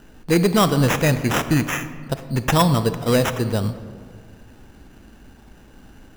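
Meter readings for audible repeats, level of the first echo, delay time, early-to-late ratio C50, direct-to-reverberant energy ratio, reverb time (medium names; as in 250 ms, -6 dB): no echo, no echo, no echo, 12.0 dB, 11.0 dB, 1.9 s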